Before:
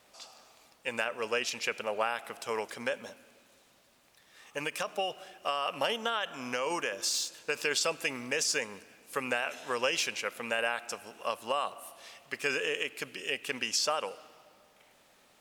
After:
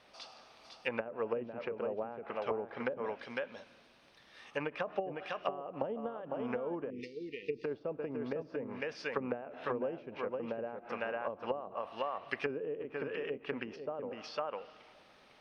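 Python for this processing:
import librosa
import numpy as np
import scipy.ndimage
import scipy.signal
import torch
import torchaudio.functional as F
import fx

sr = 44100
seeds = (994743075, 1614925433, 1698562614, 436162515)

p1 = scipy.signal.savgol_filter(x, 15, 4, mode='constant')
p2 = p1 + fx.echo_single(p1, sr, ms=503, db=-5.5, dry=0)
p3 = fx.env_lowpass_down(p2, sr, base_hz=410.0, full_db=-28.5)
p4 = fx.brickwall_bandstop(p3, sr, low_hz=490.0, high_hz=1800.0, at=(6.9, 7.64))
y = p4 * 10.0 ** (1.0 / 20.0)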